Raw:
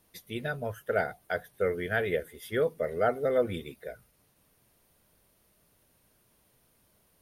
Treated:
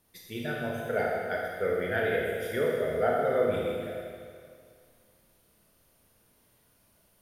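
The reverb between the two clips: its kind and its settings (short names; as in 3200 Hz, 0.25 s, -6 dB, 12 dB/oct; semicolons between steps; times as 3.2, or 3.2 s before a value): Schroeder reverb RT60 2.1 s, combs from 26 ms, DRR -3 dB; gain -3 dB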